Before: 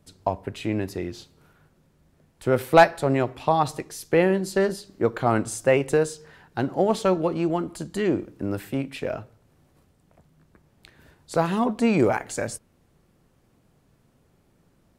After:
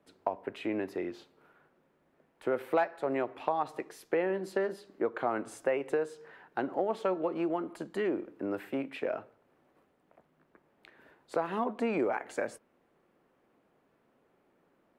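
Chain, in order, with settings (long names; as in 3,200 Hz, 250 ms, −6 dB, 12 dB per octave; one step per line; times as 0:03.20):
three-way crossover with the lows and the highs turned down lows −22 dB, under 250 Hz, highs −19 dB, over 2,800 Hz
downward compressor 3 to 1, threshold −27 dBFS, peak gain reduction 13.5 dB
high-shelf EQ 10,000 Hz +8 dB
level −1.5 dB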